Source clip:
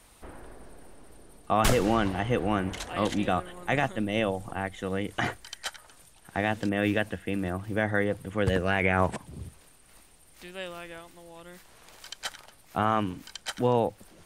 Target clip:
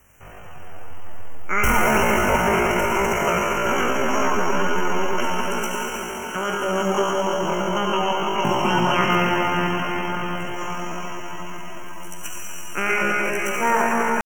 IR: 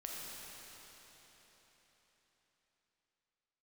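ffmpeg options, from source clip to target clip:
-filter_complex "[0:a]asuperstop=centerf=2200:order=20:qfactor=1.7[a];[1:a]atrim=start_sample=2205,asetrate=26019,aresample=44100[b];[a][b]afir=irnorm=-1:irlink=0,asetrate=83250,aresample=44100,atempo=0.529732,volume=4.5dB"

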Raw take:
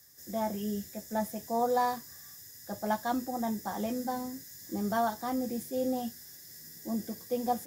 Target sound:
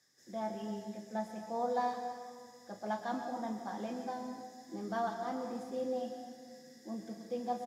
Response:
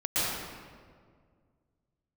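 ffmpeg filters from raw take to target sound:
-filter_complex "[0:a]highpass=190,lowpass=5.2k,asplit=2[a][b];[b]adelay=37,volume=-11.5dB[c];[a][c]amix=inputs=2:normalize=0,asplit=2[d][e];[1:a]atrim=start_sample=2205[f];[e][f]afir=irnorm=-1:irlink=0,volume=-16dB[g];[d][g]amix=inputs=2:normalize=0,volume=-7.5dB"

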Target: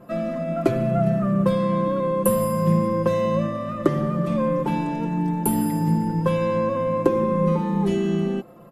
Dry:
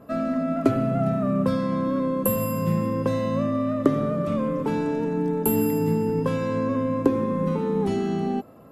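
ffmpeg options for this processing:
-af "aecho=1:1:5.7:0.83"

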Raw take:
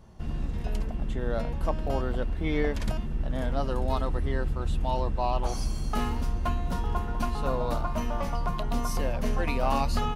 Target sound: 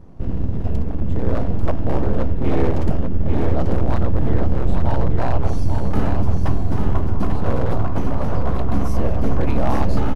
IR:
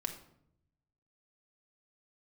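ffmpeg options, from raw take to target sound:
-af "tiltshelf=f=810:g=9,aeval=exprs='abs(val(0))':c=same,aecho=1:1:841:0.562,volume=3dB"

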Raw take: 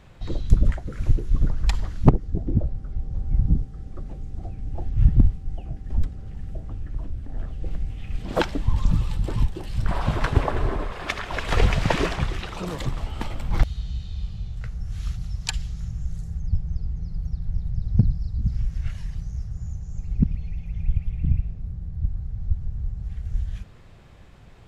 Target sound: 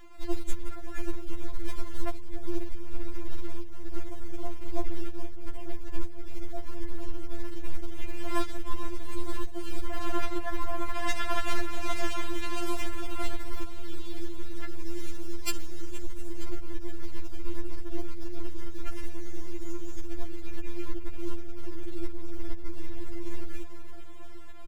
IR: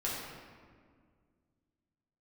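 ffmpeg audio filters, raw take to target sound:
-filter_complex "[0:a]crystalizer=i=1.5:c=0,aeval=exprs='max(val(0),0)':c=same,lowshelf=f=360:g=4.5,acompressor=threshold=-23dB:ratio=10,aecho=1:1:5.7:0.43,acrossover=split=190|3000[a][b][c];[b]acompressor=threshold=-33dB:ratio=6[d];[a][d][c]amix=inputs=3:normalize=0,acrusher=bits=7:mode=log:mix=0:aa=0.000001,equalizer=f=1.4k:w=0.47:g=6,aecho=1:1:468|936|1404|1872|2340:0.178|0.0978|0.0538|0.0296|0.0163,tremolo=f=260:d=0.919,afftfilt=real='re*4*eq(mod(b,16),0)':imag='im*4*eq(mod(b,16),0)':win_size=2048:overlap=0.75,volume=4dB"

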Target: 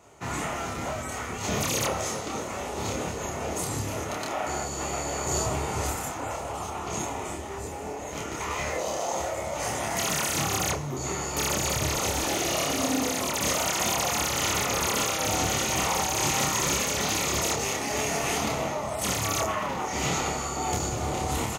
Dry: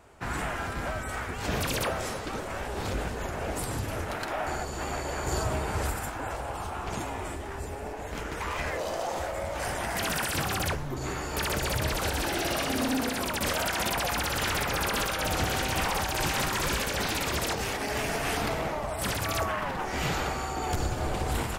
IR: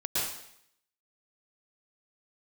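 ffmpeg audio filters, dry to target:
-filter_complex "[0:a]highpass=87,equalizer=f=6.5k:w=5.8:g=12.5,bandreject=f=1.6k:w=5.2,asplit=2[a][b];[b]adelay=28,volume=-2dB[c];[a][c]amix=inputs=2:normalize=0"

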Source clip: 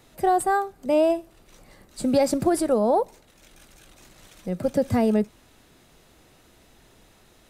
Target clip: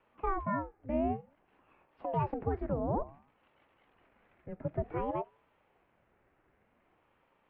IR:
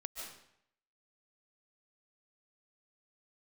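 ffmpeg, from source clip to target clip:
-af "highpass=f=240:t=q:w=0.5412,highpass=f=240:t=q:w=1.307,lowpass=f=2.4k:t=q:w=0.5176,lowpass=f=2.4k:t=q:w=0.7071,lowpass=f=2.4k:t=q:w=1.932,afreqshift=-170,bandreject=f=139.4:t=h:w=4,bandreject=f=278.8:t=h:w=4,bandreject=f=418.2:t=h:w=4,bandreject=f=557.6:t=h:w=4,bandreject=f=697:t=h:w=4,aeval=exprs='val(0)*sin(2*PI*460*n/s+460*0.6/0.55*sin(2*PI*0.55*n/s))':c=same,volume=-8.5dB"

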